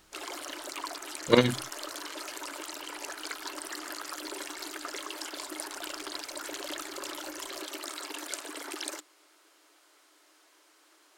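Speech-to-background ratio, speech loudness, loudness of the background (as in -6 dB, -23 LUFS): 13.0 dB, -25.0 LUFS, -38.0 LUFS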